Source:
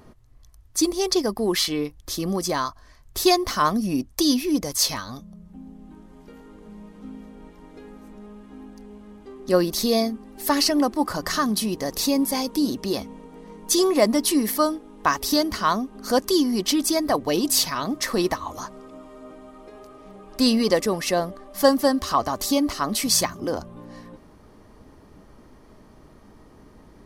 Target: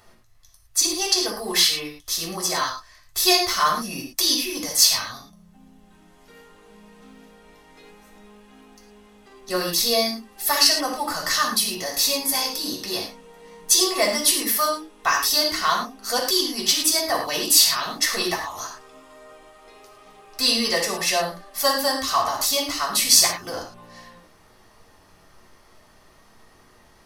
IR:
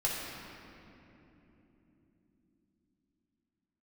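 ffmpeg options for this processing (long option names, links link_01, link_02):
-filter_complex "[0:a]tiltshelf=frequency=850:gain=-8.5,acrusher=bits=9:mode=log:mix=0:aa=0.000001[link_01];[1:a]atrim=start_sample=2205,afade=type=out:start_time=0.17:duration=0.01,atrim=end_sample=7938[link_02];[link_01][link_02]afir=irnorm=-1:irlink=0,volume=-5.5dB"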